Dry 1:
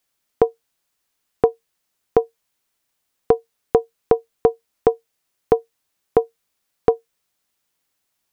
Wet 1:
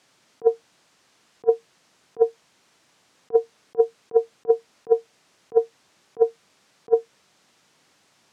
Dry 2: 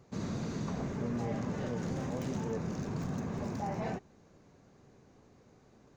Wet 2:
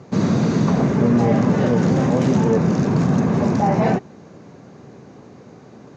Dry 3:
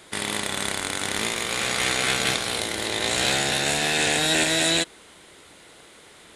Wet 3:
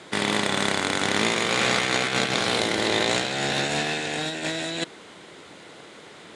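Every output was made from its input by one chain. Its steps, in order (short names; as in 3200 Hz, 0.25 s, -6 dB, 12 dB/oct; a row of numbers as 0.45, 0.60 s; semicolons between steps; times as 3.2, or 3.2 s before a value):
Chebyshev band-pass 140–6400 Hz, order 2; high shelf 2300 Hz -6.5 dB; negative-ratio compressor -29 dBFS, ratio -0.5; normalise peaks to -6 dBFS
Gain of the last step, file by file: +10.0, +20.0, +5.5 dB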